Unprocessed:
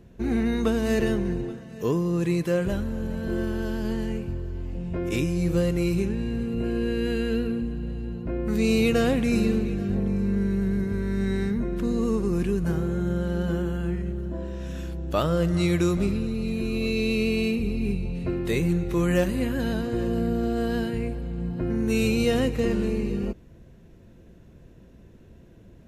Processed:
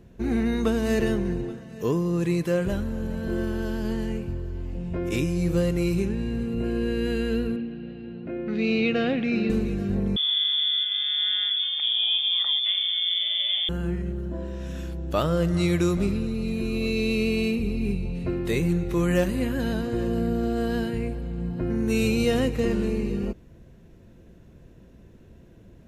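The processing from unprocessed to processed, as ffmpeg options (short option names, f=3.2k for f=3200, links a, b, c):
-filter_complex "[0:a]asettb=1/sr,asplit=3[a][b][c];[a]atrim=end=7.564[d];[b]atrim=start=7.56:end=9.5,asetpts=PTS-STARTPTS,afade=t=in:d=0.004:c=qsin,afade=t=out:st=1.936:d=0.004:c=qsin,highpass=190,equalizer=f=480:t=q:w=4:g=-3,equalizer=f=1k:t=q:w=4:g=-10,equalizer=f=2.5k:t=q:w=4:g=3,lowpass=f=4k:w=0.5412,lowpass=f=4k:w=1.3066[e];[c]atrim=start=9.496[f];[d][e]acrossfade=d=0.004:c1=hsin:c2=qsin[g];[g][f]acrossfade=d=0.004:c1=qsin:c2=hsin,asettb=1/sr,asplit=3[h][i][j];[h]atrim=end=10.164[k];[i]atrim=start=10.16:end=13.69,asetpts=PTS-STARTPTS,afade=t=in:d=0.004:c=qsin,afade=t=out:st=3.526:d=0.004:c=qsin,lowpass=f=3.1k:t=q:w=0.5098,lowpass=f=3.1k:t=q:w=0.6013,lowpass=f=3.1k:t=q:w=0.9,lowpass=f=3.1k:t=q:w=2.563,afreqshift=-3600[l];[j]atrim=start=13.686[m];[k][l]acrossfade=d=0.004:c1=hsin:c2=qsin[n];[n][m]acrossfade=d=0.004:c1=qsin:c2=hsin"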